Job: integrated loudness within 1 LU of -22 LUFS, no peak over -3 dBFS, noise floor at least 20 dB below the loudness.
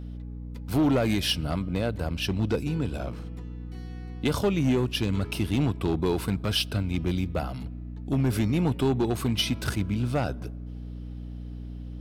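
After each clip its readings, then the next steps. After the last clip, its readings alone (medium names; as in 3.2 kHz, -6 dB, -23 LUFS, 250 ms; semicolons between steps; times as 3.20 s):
clipped samples 1.6%; clipping level -18.0 dBFS; hum 60 Hz; highest harmonic 300 Hz; hum level -35 dBFS; loudness -27.0 LUFS; peak level -18.0 dBFS; loudness target -22.0 LUFS
-> clip repair -18 dBFS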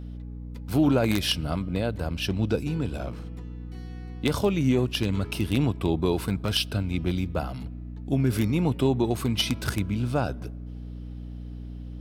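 clipped samples 0.0%; hum 60 Hz; highest harmonic 300 Hz; hum level -35 dBFS
-> hum notches 60/120/180/240/300 Hz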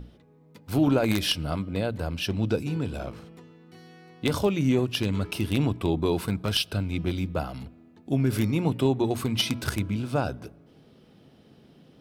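hum not found; loudness -27.0 LUFS; peak level -8.5 dBFS; loudness target -22.0 LUFS
-> trim +5 dB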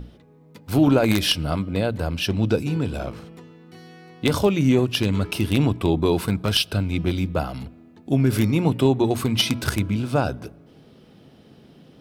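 loudness -22.0 LUFS; peak level -3.5 dBFS; noise floor -51 dBFS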